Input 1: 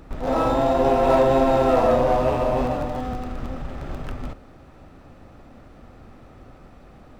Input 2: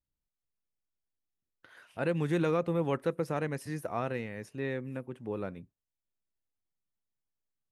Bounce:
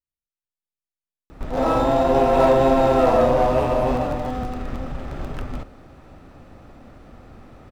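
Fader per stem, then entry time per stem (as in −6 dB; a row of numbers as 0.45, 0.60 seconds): +1.5, −9.5 decibels; 1.30, 0.00 seconds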